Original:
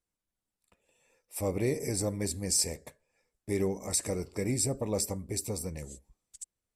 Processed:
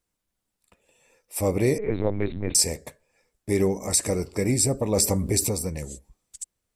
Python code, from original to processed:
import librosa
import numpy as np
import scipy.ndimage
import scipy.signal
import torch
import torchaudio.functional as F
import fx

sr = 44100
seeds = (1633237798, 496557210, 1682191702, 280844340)

y = fx.lpc_vocoder(x, sr, seeds[0], excitation='pitch_kept', order=8, at=(1.78, 2.55))
y = fx.env_flatten(y, sr, amount_pct=50, at=(4.96, 5.48), fade=0.02)
y = y * 10.0 ** (7.5 / 20.0)